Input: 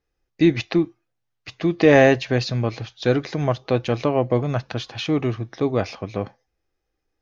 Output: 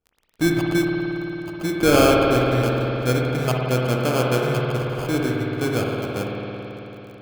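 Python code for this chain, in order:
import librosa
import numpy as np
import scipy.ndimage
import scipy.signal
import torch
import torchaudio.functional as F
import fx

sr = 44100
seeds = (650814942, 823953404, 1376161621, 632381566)

y = fx.lowpass(x, sr, hz=2500.0, slope=12, at=(2.41, 3.4))
y = fx.sample_hold(y, sr, seeds[0], rate_hz=1900.0, jitter_pct=0)
y = fx.dmg_crackle(y, sr, seeds[1], per_s=26.0, level_db=-33.0)
y = fx.rev_spring(y, sr, rt60_s=3.9, pass_ms=(55,), chirp_ms=40, drr_db=-2.0)
y = y * librosa.db_to_amplitude(-4.0)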